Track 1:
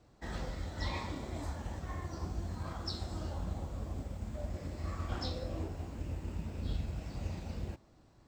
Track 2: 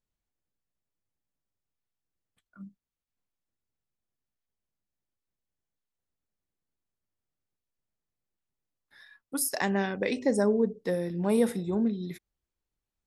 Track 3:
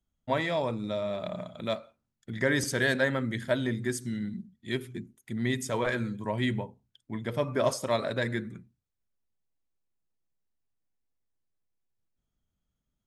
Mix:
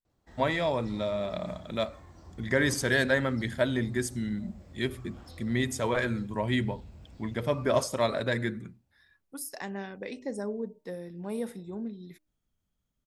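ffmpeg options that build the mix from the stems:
-filter_complex "[0:a]aeval=exprs='0.0708*sin(PI/2*1.58*val(0)/0.0708)':c=same,adelay=50,volume=0.251,asplit=2[s0][s1];[s1]volume=0.224[s2];[1:a]bandreject=f=306.1:t=h:w=4,bandreject=f=612.2:t=h:w=4,bandreject=f=918.3:t=h:w=4,volume=0.335,asplit=2[s3][s4];[2:a]adelay=100,volume=1.12[s5];[s4]apad=whole_len=366914[s6];[s0][s6]sidechaingate=range=0.447:threshold=0.001:ratio=16:detection=peak[s7];[s2]aecho=0:1:451|902|1353|1804:1|0.3|0.09|0.027[s8];[s7][s3][s5][s8]amix=inputs=4:normalize=0"

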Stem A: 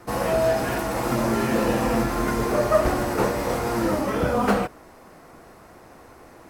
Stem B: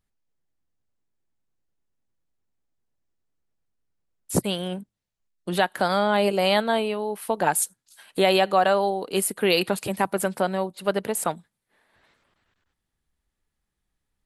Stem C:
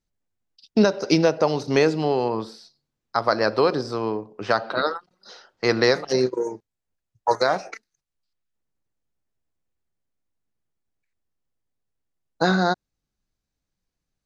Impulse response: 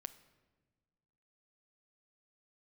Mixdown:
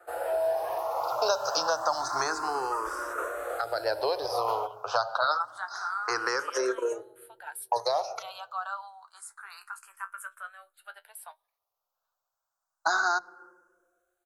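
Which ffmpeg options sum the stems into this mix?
-filter_complex "[0:a]volume=0.282,asplit=2[s0][s1];[s1]volume=0.299[s2];[1:a]highpass=f=1200:w=0.5412,highpass=f=1200:w=1.3066,agate=range=0.0224:threshold=0.00158:ratio=3:detection=peak,flanger=delay=7.5:depth=8.6:regen=48:speed=0.25:shape=sinusoidal,volume=0.266,asplit=2[s3][s4];[s4]volume=0.15[s5];[2:a]aemphasis=mode=production:type=cd,adelay=450,volume=0.841,asplit=2[s6][s7];[s7]volume=0.473[s8];[s0][s6]amix=inputs=2:normalize=0,highpass=500,alimiter=limit=0.2:level=0:latency=1:release=212,volume=1[s9];[3:a]atrim=start_sample=2205[s10];[s2][s5][s8]amix=inputs=3:normalize=0[s11];[s11][s10]afir=irnorm=-1:irlink=0[s12];[s3][s9][s12]amix=inputs=3:normalize=0,firequalizer=gain_entry='entry(120,0);entry(180,-30);entry(300,0);entry(630,11);entry(1400,14);entry(2000,-5);entry(7200,1)':delay=0.05:min_phase=1,acrossover=split=310|3000[s13][s14][s15];[s14]acompressor=threshold=0.0631:ratio=4[s16];[s13][s16][s15]amix=inputs=3:normalize=0,asplit=2[s17][s18];[s18]afreqshift=0.28[s19];[s17][s19]amix=inputs=2:normalize=1"

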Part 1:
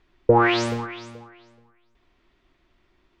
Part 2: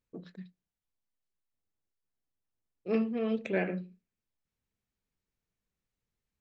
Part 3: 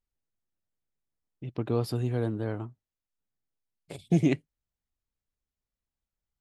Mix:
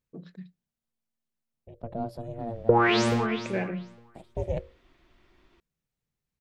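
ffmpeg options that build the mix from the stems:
-filter_complex "[0:a]adelay=2400,volume=1.33[s0];[1:a]equalizer=f=150:w=3.8:g=9.5,volume=0.944[s1];[2:a]equalizer=f=420:w=0.68:g=14.5,bandreject=f=50:t=h:w=6,bandreject=f=100:t=h:w=6,bandreject=f=150:t=h:w=6,bandreject=f=200:t=h:w=6,bandreject=f=250:t=h:w=6,bandreject=f=300:t=h:w=6,bandreject=f=350:t=h:w=6,aeval=exprs='val(0)*sin(2*PI*230*n/s)':c=same,adelay=250,volume=0.224[s2];[s0][s1][s2]amix=inputs=3:normalize=0,acompressor=threshold=0.112:ratio=2.5"

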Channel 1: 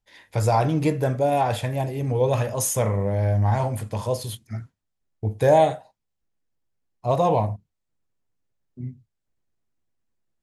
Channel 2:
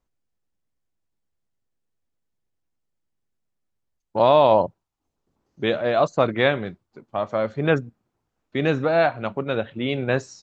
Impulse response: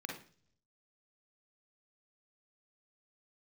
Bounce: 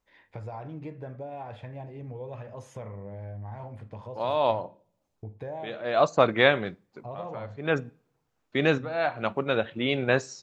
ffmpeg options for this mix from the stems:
-filter_complex "[0:a]lowpass=2500,acompressor=threshold=0.0251:ratio=3,volume=0.398,asplit=3[s0][s1][s2];[s1]volume=0.133[s3];[1:a]lowshelf=f=450:g=-5.5,volume=1.12,asplit=2[s4][s5];[s5]volume=0.0631[s6];[s2]apad=whole_len=459547[s7];[s4][s7]sidechaincompress=threshold=0.00126:ratio=4:attack=32:release=266[s8];[2:a]atrim=start_sample=2205[s9];[s3][s6]amix=inputs=2:normalize=0[s10];[s10][s9]afir=irnorm=-1:irlink=0[s11];[s0][s8][s11]amix=inputs=3:normalize=0"

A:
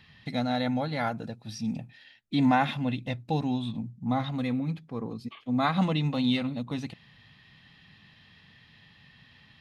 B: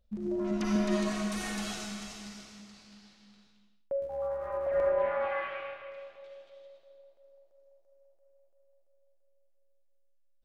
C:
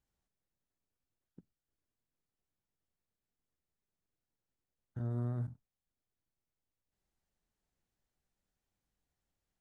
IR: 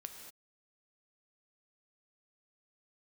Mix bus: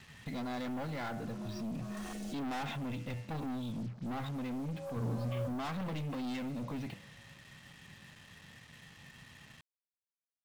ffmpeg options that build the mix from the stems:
-filter_complex "[0:a]lowpass=3100,bandreject=f=98.64:t=h:w=4,bandreject=f=197.28:t=h:w=4,bandreject=f=295.92:t=h:w=4,bandreject=f=394.56:t=h:w=4,bandreject=f=493.2:t=h:w=4,bandreject=f=591.84:t=h:w=4,bandreject=f=690.48:t=h:w=4,bandreject=f=789.12:t=h:w=4,bandreject=f=887.76:t=h:w=4,bandreject=f=986.4:t=h:w=4,bandreject=f=1085.04:t=h:w=4,bandreject=f=1183.68:t=h:w=4,bandreject=f=1282.32:t=h:w=4,bandreject=f=1380.96:t=h:w=4,bandreject=f=1479.6:t=h:w=4,bandreject=f=1578.24:t=h:w=4,bandreject=f=1676.88:t=h:w=4,bandreject=f=1775.52:t=h:w=4,bandreject=f=1874.16:t=h:w=4,bandreject=f=1972.8:t=h:w=4,bandreject=f=2071.44:t=h:w=4,bandreject=f=2170.08:t=h:w=4,bandreject=f=2268.72:t=h:w=4,bandreject=f=2367.36:t=h:w=4,bandreject=f=2466:t=h:w=4,bandreject=f=2564.64:t=h:w=4,bandreject=f=2663.28:t=h:w=4,bandreject=f=2761.92:t=h:w=4,bandreject=f=2860.56:t=h:w=4,bandreject=f=2959.2:t=h:w=4,bandreject=f=3057.84:t=h:w=4,bandreject=f=3156.48:t=h:w=4,bandreject=f=3255.12:t=h:w=4,bandreject=f=3353.76:t=h:w=4,volume=1.33,asplit=2[s0][s1];[1:a]afwtdn=0.0158,highshelf=f=3100:g=12,alimiter=level_in=1.78:limit=0.0631:level=0:latency=1,volume=0.562,adelay=650,volume=0.708[s2];[2:a]asoftclip=type=hard:threshold=0.0188,volume=1.12[s3];[s1]apad=whole_len=489168[s4];[s2][s4]sidechaincompress=threshold=0.0112:ratio=8:attack=41:release=219[s5];[s0][s5]amix=inputs=2:normalize=0,aeval=exprs='(tanh(31.6*val(0)+0.25)-tanh(0.25))/31.6':c=same,alimiter=level_in=3.16:limit=0.0631:level=0:latency=1:release=11,volume=0.316,volume=1[s6];[s3][s6]amix=inputs=2:normalize=0,acrusher=bits=8:mix=0:aa=0.5"

